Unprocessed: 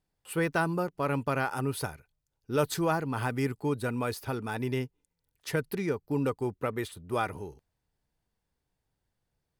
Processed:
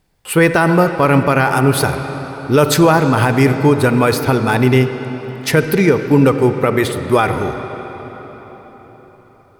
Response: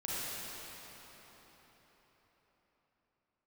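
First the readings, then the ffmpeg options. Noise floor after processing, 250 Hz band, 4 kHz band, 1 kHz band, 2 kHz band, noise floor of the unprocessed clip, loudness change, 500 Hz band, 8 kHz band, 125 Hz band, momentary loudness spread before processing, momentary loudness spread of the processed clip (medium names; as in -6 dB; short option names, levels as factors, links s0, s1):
-47 dBFS, +18.5 dB, +18.0 dB, +17.0 dB, +17.5 dB, -83 dBFS, +17.5 dB, +17.5 dB, +17.0 dB, +18.5 dB, 8 LU, 14 LU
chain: -filter_complex "[0:a]equalizer=f=2200:w=6.3:g=3,asplit=2[s0][s1];[1:a]atrim=start_sample=2205,lowpass=6500[s2];[s1][s2]afir=irnorm=-1:irlink=0,volume=0.237[s3];[s0][s3]amix=inputs=2:normalize=0,alimiter=level_in=8.41:limit=0.891:release=50:level=0:latency=1,volume=0.891"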